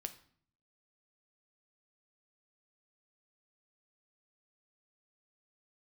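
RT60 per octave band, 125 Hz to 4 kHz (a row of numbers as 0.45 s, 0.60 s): 0.90 s, 0.80 s, 0.55 s, 0.55 s, 0.50 s, 0.45 s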